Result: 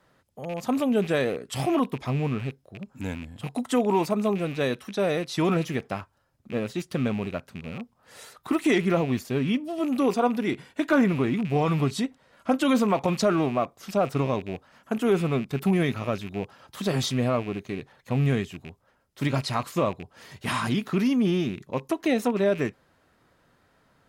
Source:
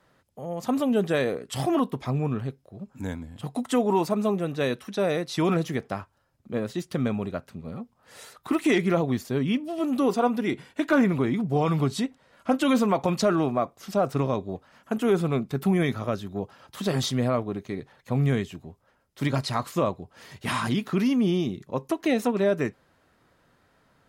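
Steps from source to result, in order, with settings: rattling part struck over -37 dBFS, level -31 dBFS

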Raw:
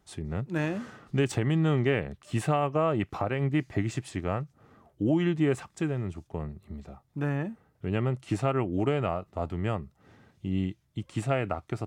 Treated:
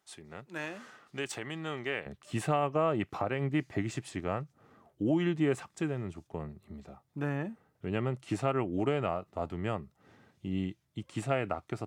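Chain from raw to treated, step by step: HPF 1000 Hz 6 dB/oct, from 2.06 s 150 Hz; gain -2 dB

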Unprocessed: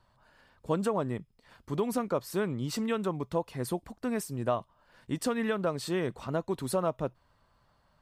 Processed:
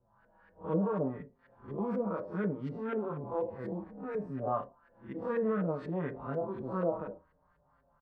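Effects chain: time blur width 0.122 s; LFO low-pass saw up 4.1 Hz 440–2000 Hz; on a send at -9 dB: reverb RT60 0.20 s, pre-delay 3 ms; on the sum: endless flanger 5.4 ms -0.62 Hz

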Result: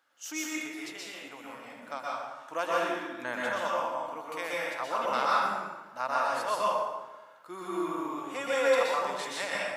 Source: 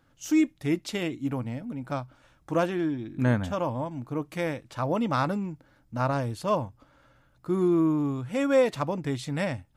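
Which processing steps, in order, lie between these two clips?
HPF 810 Hz 12 dB/oct; 0.55–1.73 compressor 4:1, threshold -43 dBFS, peak gain reduction 10.5 dB; plate-style reverb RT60 1.2 s, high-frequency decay 0.7×, pre-delay 0.11 s, DRR -5.5 dB; gain -2 dB

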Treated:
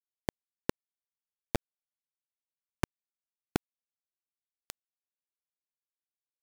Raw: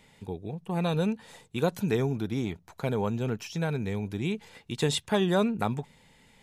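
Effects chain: flipped gate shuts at -26 dBFS, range -35 dB; loudest bins only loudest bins 32; bit-crush 5-bit; gain +8.5 dB

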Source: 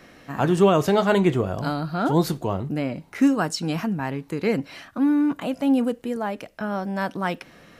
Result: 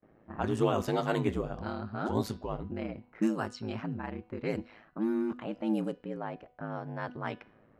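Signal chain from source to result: low-pass opened by the level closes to 830 Hz, open at -15.5 dBFS; ring modulator 54 Hz; gate with hold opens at -46 dBFS; de-hum 247 Hz, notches 22; gain -7.5 dB

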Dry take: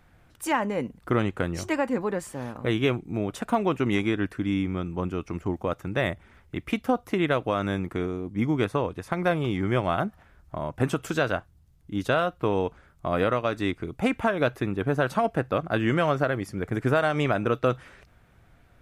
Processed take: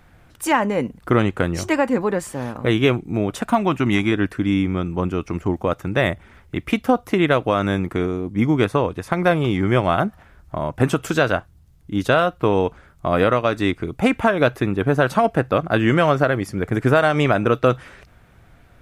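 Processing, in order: 3.44–4.12 bell 460 Hz -14 dB 0.29 oct; gain +7 dB

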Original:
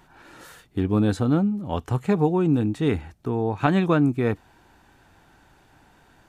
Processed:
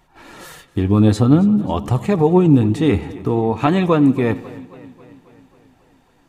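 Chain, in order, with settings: gate -51 dBFS, range -10 dB; notch 1500 Hz, Q 6.3; in parallel at +3 dB: limiter -18 dBFS, peak gain reduction 9 dB; on the sum: flange 0.52 Hz, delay 1.3 ms, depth 9.1 ms, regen +53%; on a send: analogue delay 86 ms, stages 2048, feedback 61%, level -20 dB; on the sum: warbling echo 0.271 s, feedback 60%, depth 68 cents, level -20 dB; gain +5 dB

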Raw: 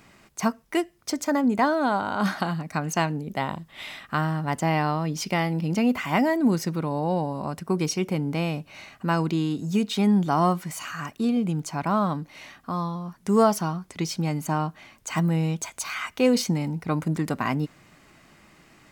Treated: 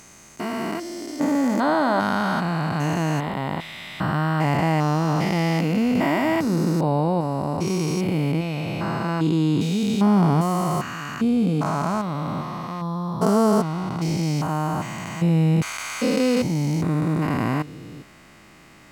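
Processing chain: stepped spectrum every 0.4 s; 7.66–8.32 high shelf 8200 Hz +5 dB; gain +7 dB

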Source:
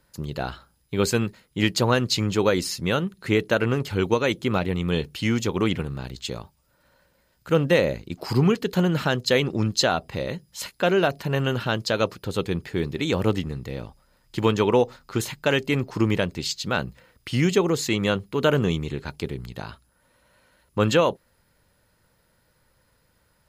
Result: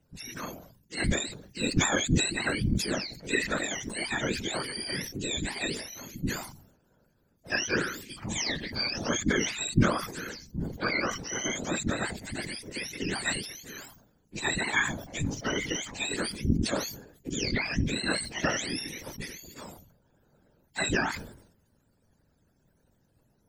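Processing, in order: spectrum mirrored in octaves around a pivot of 910 Hz; whisperiser; sustainer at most 77 dB/s; gain -6 dB

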